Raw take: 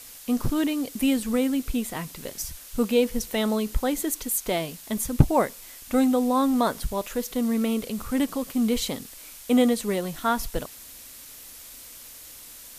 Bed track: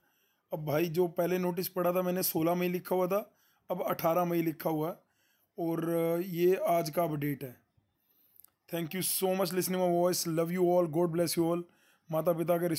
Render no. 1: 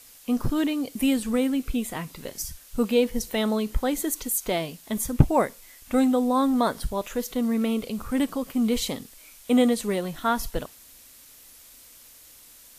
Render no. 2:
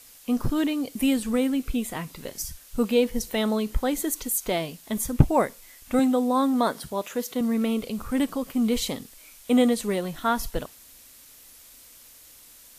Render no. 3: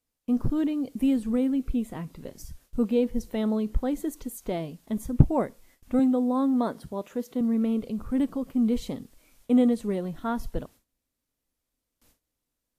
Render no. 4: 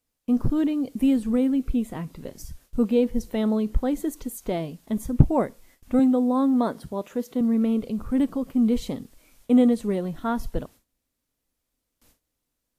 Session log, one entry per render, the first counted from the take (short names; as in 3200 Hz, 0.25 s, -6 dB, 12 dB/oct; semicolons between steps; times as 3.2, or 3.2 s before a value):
noise print and reduce 6 dB
5.99–7.41 HPF 160 Hz
gate with hold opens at -38 dBFS; EQ curve 250 Hz 0 dB, 2200 Hz -12 dB, 12000 Hz -16 dB
gain +3 dB; limiter -1 dBFS, peak gain reduction 1.5 dB